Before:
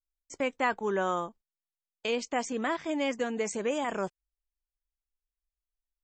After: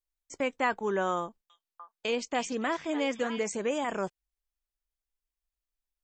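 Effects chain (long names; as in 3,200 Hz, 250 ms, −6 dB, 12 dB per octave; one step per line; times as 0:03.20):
0:01.20–0:03.44: echo through a band-pass that steps 297 ms, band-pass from 3,500 Hz, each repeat −1.4 octaves, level −5 dB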